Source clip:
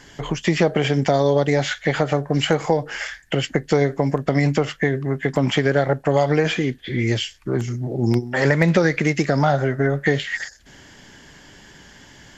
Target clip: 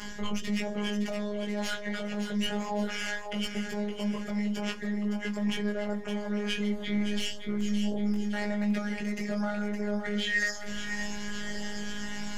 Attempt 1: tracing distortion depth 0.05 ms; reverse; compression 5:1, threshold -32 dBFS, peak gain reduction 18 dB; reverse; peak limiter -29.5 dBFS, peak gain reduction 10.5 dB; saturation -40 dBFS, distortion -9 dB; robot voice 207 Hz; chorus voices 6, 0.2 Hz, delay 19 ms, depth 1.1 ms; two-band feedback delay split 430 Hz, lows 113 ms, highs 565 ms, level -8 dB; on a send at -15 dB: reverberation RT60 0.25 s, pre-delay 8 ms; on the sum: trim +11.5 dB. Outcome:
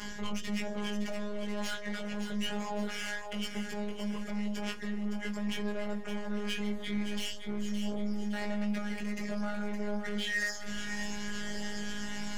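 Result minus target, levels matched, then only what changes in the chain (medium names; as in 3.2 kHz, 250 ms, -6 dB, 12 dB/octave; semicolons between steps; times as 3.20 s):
saturation: distortion +13 dB
change: saturation -29.5 dBFS, distortion -22 dB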